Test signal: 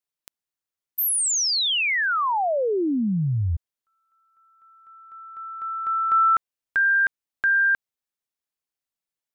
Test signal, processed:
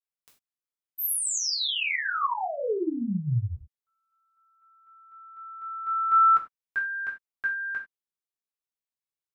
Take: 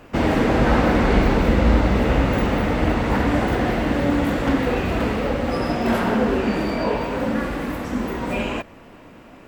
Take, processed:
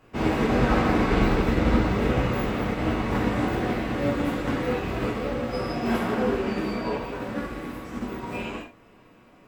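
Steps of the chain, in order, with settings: gated-style reverb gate 120 ms falling, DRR -3 dB; upward expansion 1.5:1, over -23 dBFS; trim -7 dB

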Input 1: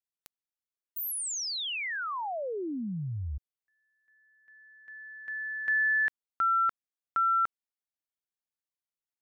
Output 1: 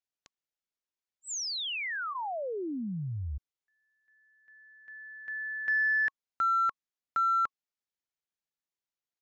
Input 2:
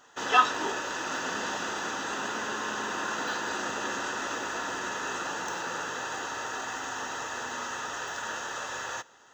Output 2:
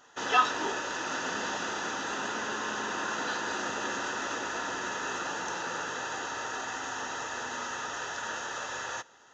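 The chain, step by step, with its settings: band-stop 1.1 kHz, Q 24; in parallel at -6.5 dB: hard clipper -24 dBFS; on the sum: resampled via 16 kHz; trim -4 dB

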